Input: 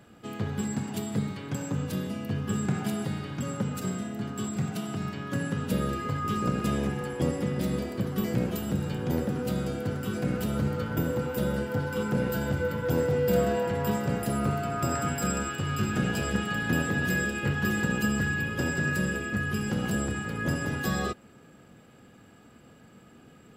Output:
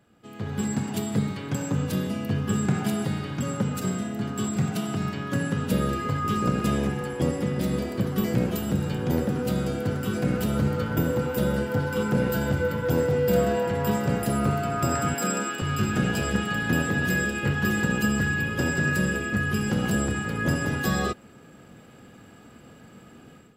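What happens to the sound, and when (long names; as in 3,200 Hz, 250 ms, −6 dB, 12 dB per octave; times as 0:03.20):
0:15.14–0:15.62: high-pass filter 190 Hz 24 dB per octave
whole clip: automatic gain control gain up to 13.5 dB; level −8.5 dB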